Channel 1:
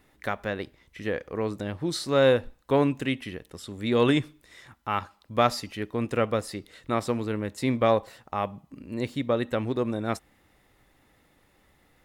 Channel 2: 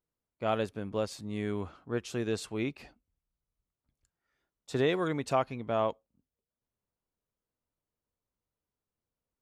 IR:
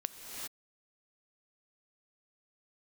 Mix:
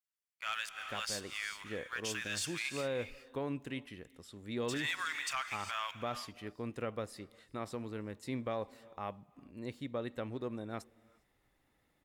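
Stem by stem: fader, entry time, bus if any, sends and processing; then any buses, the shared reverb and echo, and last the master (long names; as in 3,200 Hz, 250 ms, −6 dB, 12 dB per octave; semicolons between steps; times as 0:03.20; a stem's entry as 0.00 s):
−13.0 dB, 0.65 s, send −22.5 dB, no processing
−2.5 dB, 0.00 s, send −5 dB, high-pass filter 1,500 Hz 24 dB per octave; notch filter 4,000 Hz, Q 7.6; leveller curve on the samples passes 2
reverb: on, pre-delay 3 ms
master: brickwall limiter −27.5 dBFS, peak gain reduction 7.5 dB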